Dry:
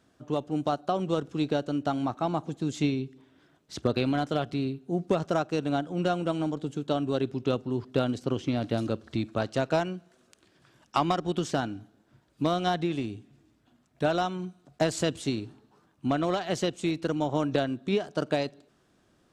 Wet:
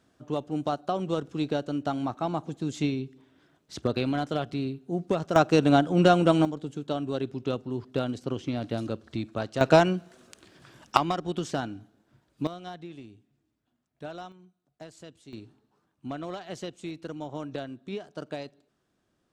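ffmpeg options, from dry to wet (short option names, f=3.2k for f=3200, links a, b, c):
-af "asetnsamples=n=441:p=0,asendcmd='5.36 volume volume 8dB;6.45 volume volume -2.5dB;9.61 volume volume 8dB;10.97 volume volume -2dB;12.47 volume volume -13.5dB;14.32 volume volume -19.5dB;15.33 volume volume -9dB',volume=-1dB"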